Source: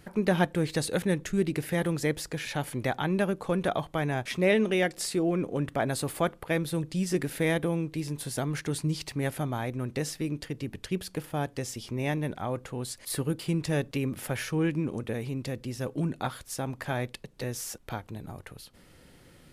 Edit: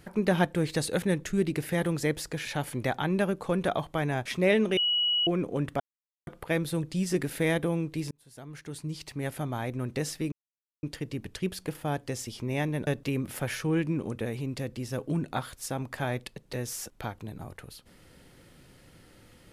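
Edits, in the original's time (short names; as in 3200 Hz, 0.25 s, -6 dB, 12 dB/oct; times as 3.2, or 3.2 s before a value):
4.77–5.27 bleep 2920 Hz -23 dBFS
5.8–6.27 mute
8.11–9.76 fade in
10.32 insert silence 0.51 s
12.36–13.75 cut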